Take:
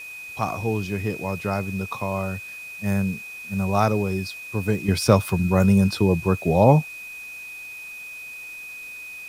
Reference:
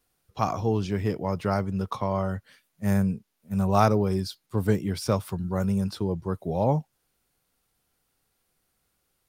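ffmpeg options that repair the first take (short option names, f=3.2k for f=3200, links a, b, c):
-af "adeclick=t=4,bandreject=f=2.5k:w=30,afwtdn=0.004,asetnsamples=n=441:p=0,asendcmd='4.88 volume volume -8.5dB',volume=0dB"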